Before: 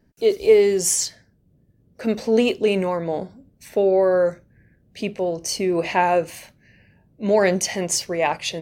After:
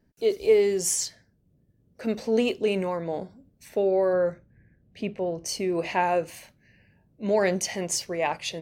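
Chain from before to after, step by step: 4.13–5.46 s: tone controls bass +3 dB, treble -10 dB; trim -5.5 dB

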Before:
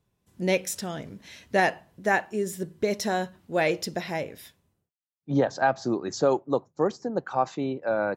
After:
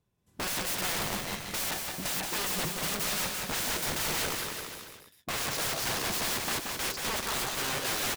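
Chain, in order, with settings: waveshaping leveller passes 2; integer overflow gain 27.5 dB; bouncing-ball echo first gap 180 ms, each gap 0.9×, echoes 5

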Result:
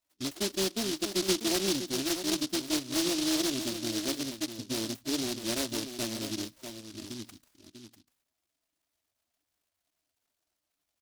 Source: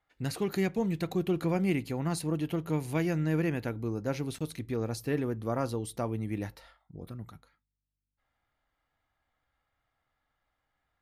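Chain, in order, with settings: comb filter that takes the minimum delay 3.1 ms; in parallel at -0.5 dB: compression, threshold -39 dBFS, peak gain reduction 14 dB; on the sum: loudest bins only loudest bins 16; band-pass 180–3800 Hz; on a send: delay 645 ms -9 dB; on the sum: delay time shaken by noise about 4.3 kHz, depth 0.3 ms; trim -1.5 dB

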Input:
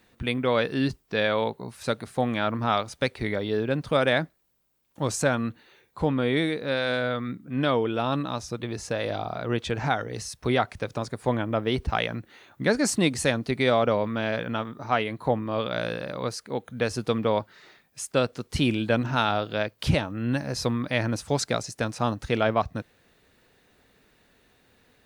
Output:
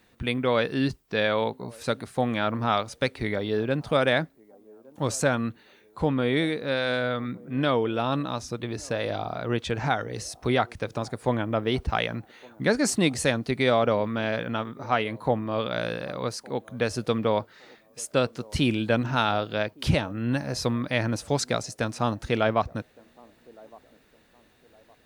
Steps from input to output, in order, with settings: feedback echo behind a band-pass 1163 ms, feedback 33%, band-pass 480 Hz, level -23.5 dB

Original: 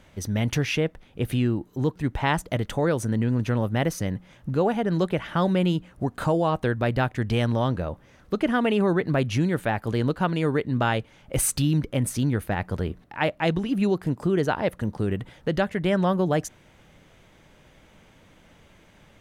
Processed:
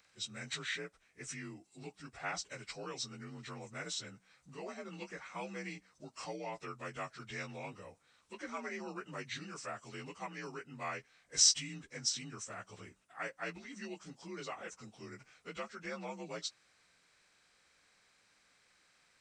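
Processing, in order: frequency axis rescaled in octaves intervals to 86%; pre-emphasis filter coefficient 0.97; trim +3 dB

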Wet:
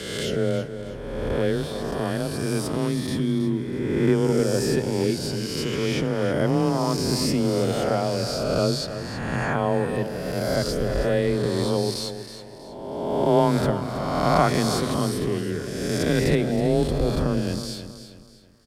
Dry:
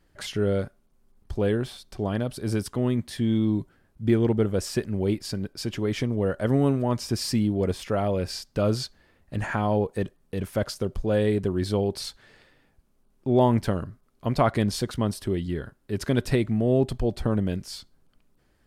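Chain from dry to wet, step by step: reverse spectral sustain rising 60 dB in 1.73 s; frequency shift +20 Hz; feedback delay 321 ms, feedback 35%, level -11 dB; trim -1 dB

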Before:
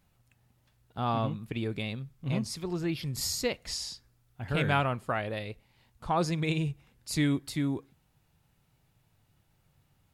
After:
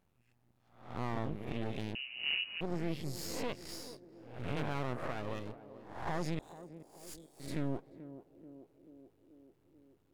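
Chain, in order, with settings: reverse spectral sustain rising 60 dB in 0.57 s; high-pass 120 Hz 6 dB/octave; tilt shelf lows +5 dB, about 1.3 kHz; 6.39–7.40 s: inverse Chebyshev band-stop 240–1200 Hz, stop band 80 dB; peak limiter -19.5 dBFS, peak gain reduction 8.5 dB; half-wave rectifier; band-passed feedback delay 435 ms, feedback 70%, band-pass 370 Hz, level -11.5 dB; 1.95–2.61 s: frequency inversion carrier 2.9 kHz; trim -5 dB

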